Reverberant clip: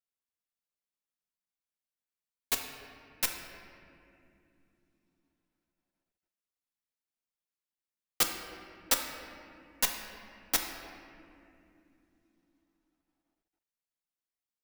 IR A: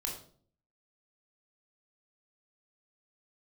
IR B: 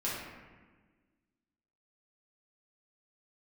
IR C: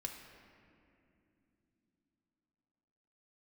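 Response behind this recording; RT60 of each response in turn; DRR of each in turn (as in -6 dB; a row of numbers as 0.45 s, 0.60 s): C; 0.50 s, 1.4 s, no single decay rate; -1.0 dB, -8.0 dB, 2.0 dB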